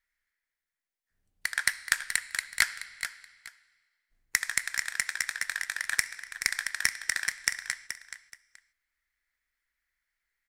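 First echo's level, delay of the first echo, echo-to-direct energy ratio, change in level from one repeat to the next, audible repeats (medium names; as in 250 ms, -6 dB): -10.0 dB, 427 ms, -10.0 dB, -12.5 dB, 2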